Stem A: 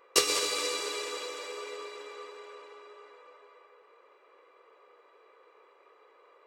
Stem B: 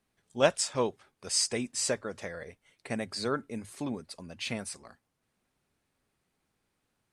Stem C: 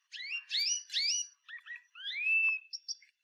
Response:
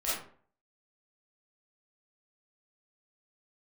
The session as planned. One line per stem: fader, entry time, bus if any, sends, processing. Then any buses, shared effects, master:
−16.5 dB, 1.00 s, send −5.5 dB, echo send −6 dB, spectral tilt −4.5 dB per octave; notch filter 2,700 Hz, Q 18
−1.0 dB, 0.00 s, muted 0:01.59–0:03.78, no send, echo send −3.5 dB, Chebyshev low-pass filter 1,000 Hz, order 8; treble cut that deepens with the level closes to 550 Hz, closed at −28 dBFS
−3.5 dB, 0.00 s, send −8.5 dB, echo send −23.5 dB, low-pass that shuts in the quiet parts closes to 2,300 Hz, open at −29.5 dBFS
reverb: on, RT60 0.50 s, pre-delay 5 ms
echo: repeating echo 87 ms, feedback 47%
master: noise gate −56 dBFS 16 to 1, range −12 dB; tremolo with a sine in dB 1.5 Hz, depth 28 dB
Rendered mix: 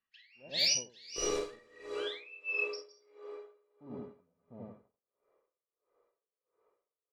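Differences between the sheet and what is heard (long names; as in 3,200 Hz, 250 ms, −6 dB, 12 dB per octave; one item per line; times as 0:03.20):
stem B −1.0 dB → −8.0 dB
reverb return +9.5 dB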